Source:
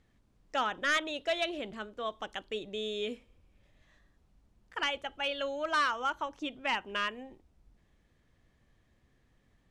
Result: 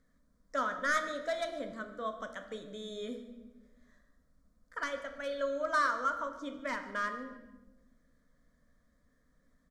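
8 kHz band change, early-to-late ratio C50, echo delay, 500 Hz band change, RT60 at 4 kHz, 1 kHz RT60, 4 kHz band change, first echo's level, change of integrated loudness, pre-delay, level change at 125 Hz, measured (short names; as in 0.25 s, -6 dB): -1.0 dB, 9.5 dB, 0.147 s, -0.5 dB, 0.85 s, 0.95 s, -11.0 dB, -19.0 dB, -2.0 dB, 7 ms, n/a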